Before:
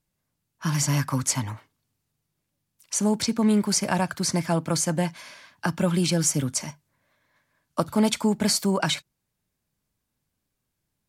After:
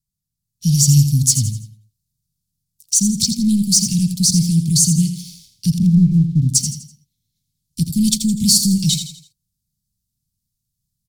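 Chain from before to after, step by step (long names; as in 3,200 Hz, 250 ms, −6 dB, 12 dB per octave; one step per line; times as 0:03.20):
0:05.78–0:06.49: Butterworth low-pass 1,800 Hz 48 dB per octave
leveller curve on the samples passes 2
inverse Chebyshev band-stop filter 620–1,300 Hz, stop band 80 dB
repeating echo 83 ms, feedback 38%, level −9 dB
automatic gain control gain up to 6 dB
level +1 dB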